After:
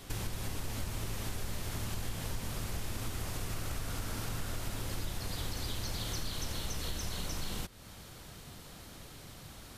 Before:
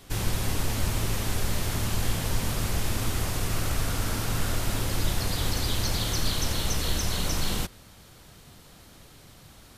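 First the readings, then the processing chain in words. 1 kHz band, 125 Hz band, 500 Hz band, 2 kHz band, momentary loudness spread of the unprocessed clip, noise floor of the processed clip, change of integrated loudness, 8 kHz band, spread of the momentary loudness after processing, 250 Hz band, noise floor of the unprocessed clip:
-10.0 dB, -10.0 dB, -10.0 dB, -10.0 dB, 2 LU, -51 dBFS, -11.0 dB, -10.0 dB, 12 LU, -10.0 dB, -52 dBFS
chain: compressor 3:1, threshold -38 dBFS, peak gain reduction 14.5 dB; gain +1 dB

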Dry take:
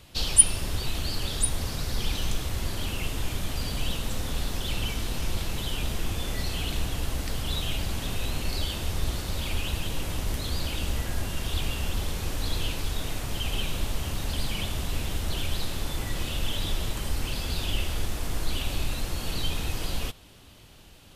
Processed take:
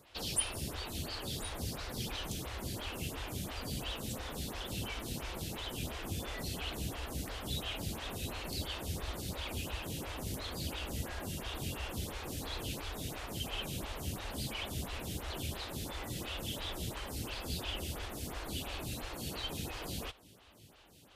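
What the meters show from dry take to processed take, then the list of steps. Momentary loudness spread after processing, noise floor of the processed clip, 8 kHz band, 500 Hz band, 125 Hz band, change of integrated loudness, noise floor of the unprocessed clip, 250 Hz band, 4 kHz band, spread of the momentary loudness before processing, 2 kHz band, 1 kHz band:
3 LU, -59 dBFS, -13.0 dB, -5.5 dB, -9.5 dB, -9.5 dB, -50 dBFS, -6.0 dB, -8.0 dB, 3 LU, -7.5 dB, -5.5 dB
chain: HPF 55 Hz; photocell phaser 2.9 Hz; gain -3 dB

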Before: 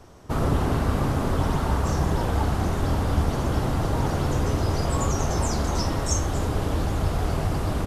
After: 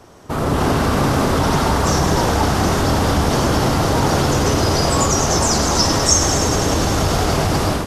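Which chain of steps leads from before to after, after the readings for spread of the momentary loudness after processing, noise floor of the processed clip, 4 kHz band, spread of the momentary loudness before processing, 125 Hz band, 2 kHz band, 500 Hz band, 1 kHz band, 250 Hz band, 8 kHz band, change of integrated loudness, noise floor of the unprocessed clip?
3 LU, -22 dBFS, +15.5 dB, 2 LU, +5.0 dB, +11.5 dB, +10.0 dB, +10.5 dB, +8.5 dB, +15.0 dB, +8.5 dB, -28 dBFS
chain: thin delay 0.101 s, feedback 82%, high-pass 1400 Hz, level -9 dB; in parallel at +3 dB: limiter -19.5 dBFS, peak gain reduction 9.5 dB; on the sum: low shelf 93 Hz -11.5 dB; AGC gain up to 7.5 dB; dynamic EQ 5400 Hz, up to +6 dB, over -36 dBFS, Q 1.7; gain -1.5 dB

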